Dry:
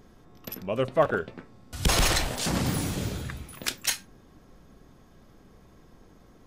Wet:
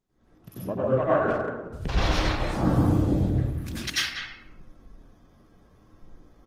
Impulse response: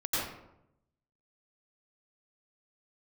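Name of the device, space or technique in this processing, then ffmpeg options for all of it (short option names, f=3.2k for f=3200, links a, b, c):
speakerphone in a meeting room: -filter_complex "[0:a]asettb=1/sr,asplit=3[a][b][c];[a]atrim=end=1.364[d];[b]atrim=start=1.36:end=2.01,asetpts=PTS-STARTPTS,afade=t=in:d=0.004:c=qsin,afade=t=out:st=0.646:d=0.004:c=qsin,acrossover=split=5100[e][f];[f]acompressor=threshold=-41dB:ratio=4:attack=1:release=60[g];[e][g]amix=inputs=2:normalize=0[h];[c]atrim=start=2.006[i];[d][h]acrossfade=d=0.004:c1=hsin:c2=qsin[j];[j][i]acrossfade=d=0.004:c1=qsin:c2=hsin,afwtdn=0.0251[k];[1:a]atrim=start_sample=2205[l];[k][l]afir=irnorm=-1:irlink=0,asplit=2[m][n];[n]adelay=190,highpass=300,lowpass=3.4k,asoftclip=type=hard:threshold=-11dB,volume=-7dB[o];[m][o]amix=inputs=2:normalize=0,dynaudnorm=f=160:g=3:m=14dB,volume=-9dB" -ar 48000 -c:a libopus -b:a 20k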